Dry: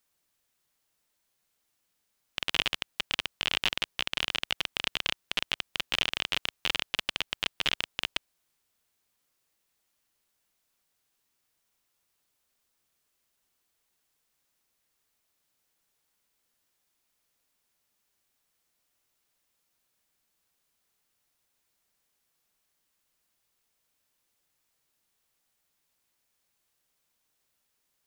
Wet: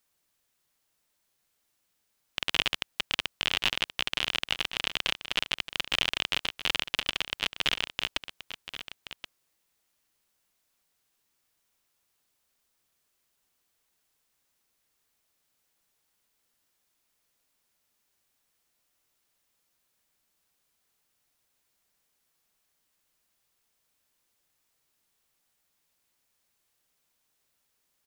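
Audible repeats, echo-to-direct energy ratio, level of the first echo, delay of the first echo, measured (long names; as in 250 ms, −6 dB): 1, −12.0 dB, −12.0 dB, 1,077 ms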